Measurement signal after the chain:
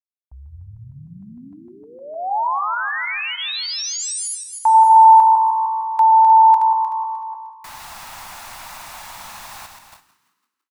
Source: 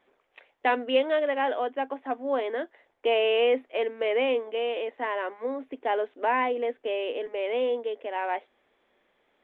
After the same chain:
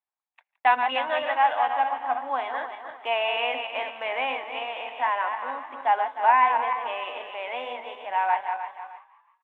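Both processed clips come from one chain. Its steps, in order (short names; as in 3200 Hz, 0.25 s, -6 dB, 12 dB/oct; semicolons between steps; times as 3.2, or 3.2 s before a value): regenerating reverse delay 0.153 s, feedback 56%, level -6 dB; notch 3100 Hz, Q 18; gate -48 dBFS, range -32 dB; resonant low shelf 610 Hz -11.5 dB, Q 3; on a send: frequency-shifting echo 0.168 s, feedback 53%, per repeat +61 Hz, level -18.5 dB; on the sum: gain +1.5 dB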